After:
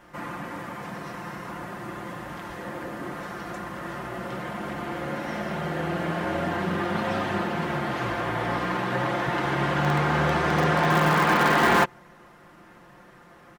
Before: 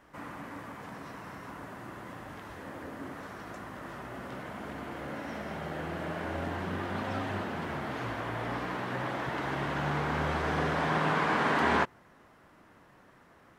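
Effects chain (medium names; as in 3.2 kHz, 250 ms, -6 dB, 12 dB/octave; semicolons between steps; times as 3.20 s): comb 5.7 ms, depth 58%; in parallel at -11.5 dB: integer overflow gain 19 dB; on the sum: trim +4.5 dB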